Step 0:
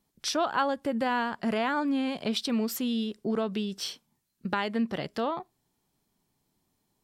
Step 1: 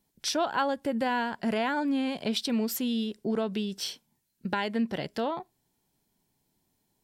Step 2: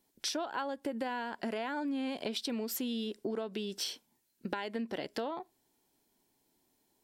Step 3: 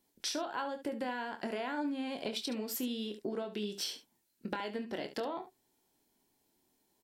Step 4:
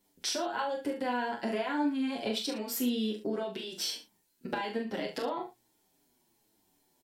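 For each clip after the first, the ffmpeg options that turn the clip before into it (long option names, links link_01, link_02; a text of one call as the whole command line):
ffmpeg -i in.wav -af "highshelf=frequency=10000:gain=4,bandreject=frequency=1200:width=6.1" out.wav
ffmpeg -i in.wav -af "lowshelf=frequency=220:width_type=q:width=1.5:gain=-7.5,acompressor=threshold=-34dB:ratio=6,volume=1dB" out.wav
ffmpeg -i in.wav -af "aecho=1:1:24|71:0.376|0.251,volume=-1.5dB" out.wav
ffmpeg -i in.wav -filter_complex "[0:a]asplit=2[link_01][link_02];[link_02]adelay=41,volume=-6dB[link_03];[link_01][link_03]amix=inputs=2:normalize=0,asplit=2[link_04][link_05];[link_05]adelay=7.3,afreqshift=-1.2[link_06];[link_04][link_06]amix=inputs=2:normalize=1,volume=6dB" out.wav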